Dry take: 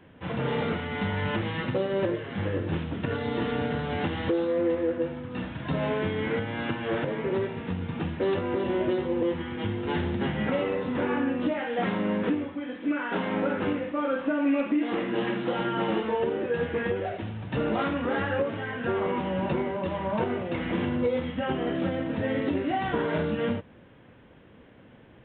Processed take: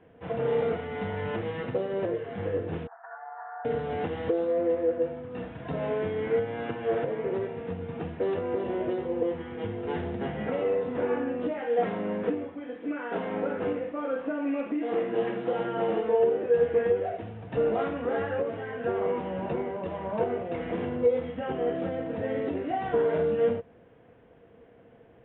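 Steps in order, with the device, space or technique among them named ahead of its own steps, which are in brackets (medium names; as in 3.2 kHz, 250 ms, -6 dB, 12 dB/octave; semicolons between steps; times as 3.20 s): 2.87–3.65 s: Chebyshev band-pass 710–1700 Hz, order 4; inside a cardboard box (low-pass 2.9 kHz 12 dB/octave; small resonant body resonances 470/680 Hz, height 13 dB, ringing for 55 ms); trim -6 dB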